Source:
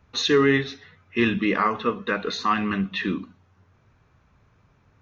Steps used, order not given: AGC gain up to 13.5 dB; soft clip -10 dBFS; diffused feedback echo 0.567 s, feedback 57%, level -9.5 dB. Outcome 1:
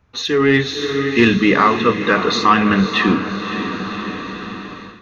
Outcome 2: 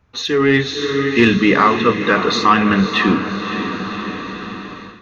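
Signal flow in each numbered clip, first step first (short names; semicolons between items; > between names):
soft clip > diffused feedback echo > AGC; diffused feedback echo > soft clip > AGC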